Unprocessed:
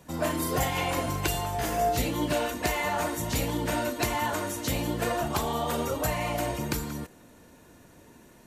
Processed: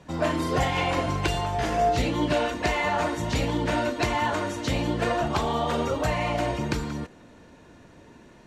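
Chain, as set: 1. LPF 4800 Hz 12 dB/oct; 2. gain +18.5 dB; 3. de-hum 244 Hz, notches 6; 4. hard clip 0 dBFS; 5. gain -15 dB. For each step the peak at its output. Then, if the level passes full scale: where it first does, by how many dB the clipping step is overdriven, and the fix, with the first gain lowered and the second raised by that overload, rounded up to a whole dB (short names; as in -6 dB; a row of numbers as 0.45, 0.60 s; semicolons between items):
-13.5, +5.0, +5.0, 0.0, -15.0 dBFS; step 2, 5.0 dB; step 2 +13.5 dB, step 5 -10 dB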